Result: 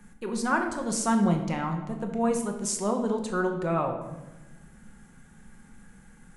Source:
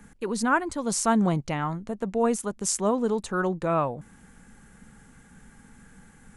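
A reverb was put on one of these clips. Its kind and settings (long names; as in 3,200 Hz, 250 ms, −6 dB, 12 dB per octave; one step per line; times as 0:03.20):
rectangular room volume 480 cubic metres, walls mixed, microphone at 0.96 metres
level −4 dB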